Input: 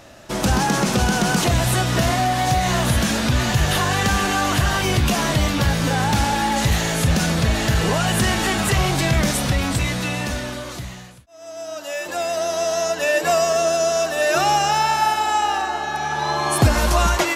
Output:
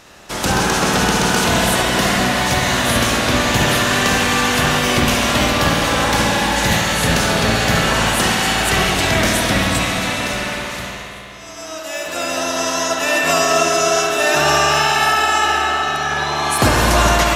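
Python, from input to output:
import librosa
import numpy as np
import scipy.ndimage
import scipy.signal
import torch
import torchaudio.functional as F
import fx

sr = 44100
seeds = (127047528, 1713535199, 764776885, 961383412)

y = fx.spec_clip(x, sr, under_db=13)
y = fx.echo_thinned(y, sr, ms=69, feedback_pct=82, hz=420.0, wet_db=-12)
y = fx.rev_spring(y, sr, rt60_s=3.3, pass_ms=(53,), chirp_ms=30, drr_db=-0.5)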